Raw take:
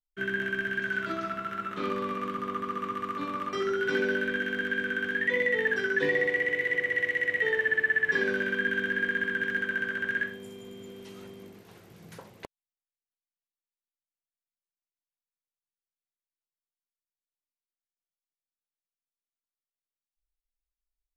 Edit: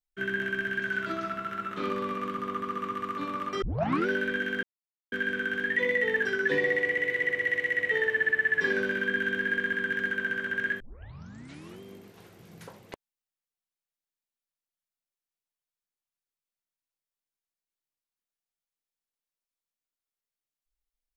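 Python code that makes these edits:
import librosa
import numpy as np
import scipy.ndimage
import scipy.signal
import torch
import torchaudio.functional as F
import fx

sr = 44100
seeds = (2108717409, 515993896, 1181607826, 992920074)

y = fx.edit(x, sr, fx.tape_start(start_s=3.62, length_s=0.45),
    fx.insert_silence(at_s=4.63, length_s=0.49),
    fx.tape_start(start_s=10.31, length_s=1.01), tone=tone)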